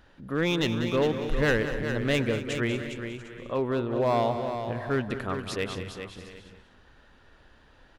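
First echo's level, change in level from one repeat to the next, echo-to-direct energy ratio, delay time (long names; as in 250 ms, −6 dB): −11.0 dB, repeats not evenly spaced, −5.5 dB, 190 ms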